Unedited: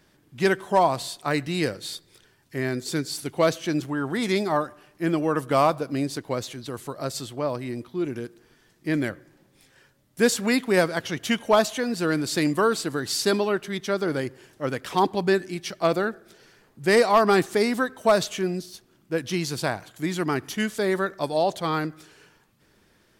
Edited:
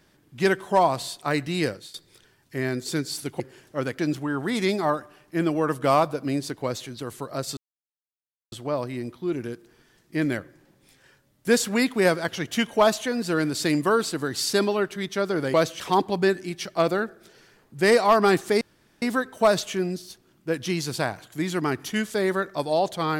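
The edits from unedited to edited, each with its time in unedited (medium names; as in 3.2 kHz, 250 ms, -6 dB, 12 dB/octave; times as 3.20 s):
1.69–1.94 s: fade out, to -19.5 dB
3.40–3.66 s: swap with 14.26–14.85 s
7.24 s: insert silence 0.95 s
17.66 s: insert room tone 0.41 s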